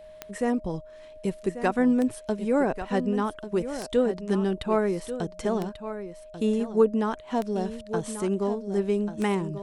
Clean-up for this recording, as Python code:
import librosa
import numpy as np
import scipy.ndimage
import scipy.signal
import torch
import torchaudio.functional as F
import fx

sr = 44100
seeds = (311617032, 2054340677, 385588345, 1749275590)

y = fx.fix_declick_ar(x, sr, threshold=10.0)
y = fx.notch(y, sr, hz=620.0, q=30.0)
y = fx.fix_echo_inverse(y, sr, delay_ms=1140, level_db=-11.0)